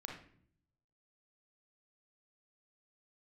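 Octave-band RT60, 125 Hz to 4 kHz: 1.1, 0.90, 0.65, 0.50, 0.50, 0.45 seconds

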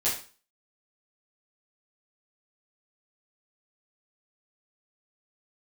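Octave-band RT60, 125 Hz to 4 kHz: 0.40, 0.40, 0.35, 0.40, 0.35, 0.35 seconds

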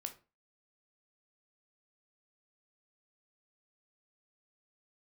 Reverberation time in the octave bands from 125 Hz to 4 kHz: 0.35, 0.35, 0.30, 0.30, 0.30, 0.25 seconds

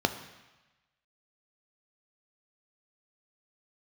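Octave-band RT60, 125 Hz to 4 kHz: 1.2, 1.0, 1.0, 1.2, 1.2, 1.2 seconds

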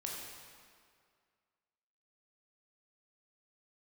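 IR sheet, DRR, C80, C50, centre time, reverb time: −2.5 dB, 1.5 dB, 0.0 dB, 98 ms, 2.1 s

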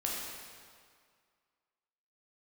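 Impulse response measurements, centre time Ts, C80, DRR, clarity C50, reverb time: 111 ms, 1.0 dB, −4.0 dB, −1.0 dB, 2.0 s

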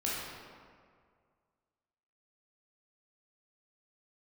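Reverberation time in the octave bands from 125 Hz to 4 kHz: 2.2, 2.0, 2.1, 2.0, 1.6, 1.1 seconds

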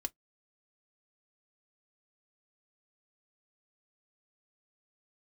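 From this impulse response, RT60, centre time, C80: 0.10 s, 3 ms, 54.5 dB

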